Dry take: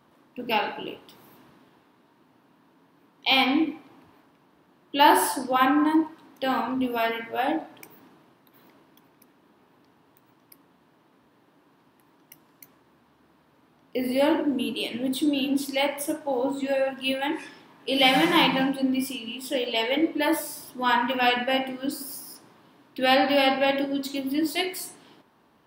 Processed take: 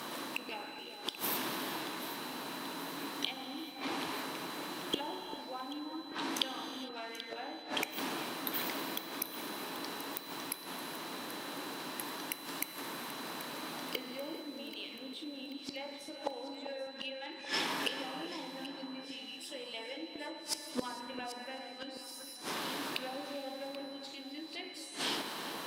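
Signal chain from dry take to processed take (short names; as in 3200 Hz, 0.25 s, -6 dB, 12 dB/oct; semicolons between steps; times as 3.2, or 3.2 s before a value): G.711 law mismatch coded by mu; treble ducked by the level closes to 630 Hz, closed at -16.5 dBFS; HPF 230 Hz 12 dB/oct; high shelf 2200 Hz +11.5 dB; in parallel at +2.5 dB: compressor 4:1, threshold -33 dBFS, peak gain reduction 16 dB; on the sum: flipped gate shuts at -19 dBFS, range -25 dB; whine 4000 Hz -54 dBFS; on a send: echo with dull and thin repeats by turns 0.392 s, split 1800 Hz, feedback 69%, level -10 dB; on the sum: non-linear reverb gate 0.48 s flat, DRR 9 dB; gain +1 dB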